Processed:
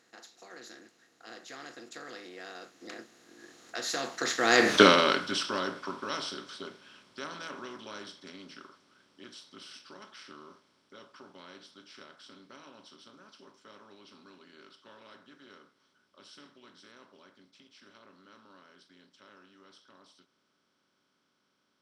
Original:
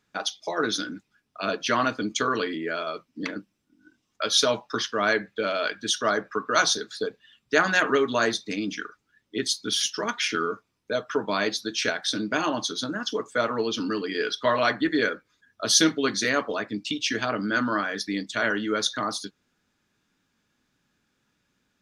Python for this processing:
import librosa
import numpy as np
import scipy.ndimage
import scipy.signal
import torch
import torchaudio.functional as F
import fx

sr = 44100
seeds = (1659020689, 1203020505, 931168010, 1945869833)

y = fx.bin_compress(x, sr, power=0.4)
y = fx.doppler_pass(y, sr, speed_mps=38, closest_m=2.8, pass_at_s=4.76)
y = F.gain(torch.from_numpy(y), 5.0).numpy()